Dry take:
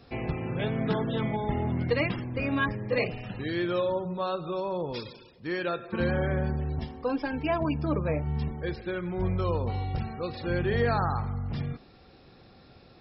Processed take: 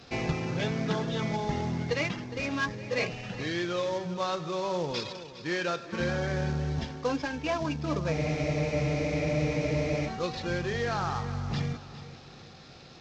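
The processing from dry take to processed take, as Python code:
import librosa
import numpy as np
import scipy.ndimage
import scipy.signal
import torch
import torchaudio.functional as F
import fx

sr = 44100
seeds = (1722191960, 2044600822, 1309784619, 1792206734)

y = fx.cvsd(x, sr, bps=32000)
y = fx.tilt_eq(y, sr, slope=1.5)
y = fx.rider(y, sr, range_db=4, speed_s=0.5)
y = fx.peak_eq(y, sr, hz=160.0, db=4.5, octaves=0.45)
y = fx.echo_feedback(y, sr, ms=411, feedback_pct=41, wet_db=-14.5)
y = fx.spec_freeze(y, sr, seeds[0], at_s=8.14, hold_s=1.92)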